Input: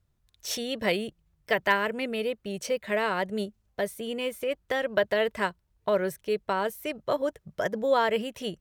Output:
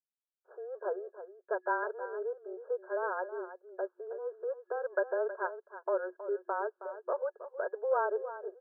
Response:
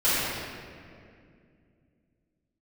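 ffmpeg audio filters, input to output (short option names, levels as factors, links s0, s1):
-filter_complex "[0:a]afftfilt=real='re*between(b*sr/4096,380,1700)':imag='im*between(b*sr/4096,380,1700)':win_size=4096:overlap=0.75,agate=range=0.0224:threshold=0.00178:ratio=3:detection=peak,afreqshift=-21,asplit=2[s0][s1];[s1]aecho=0:1:319:0.237[s2];[s0][s2]amix=inputs=2:normalize=0,volume=0.501"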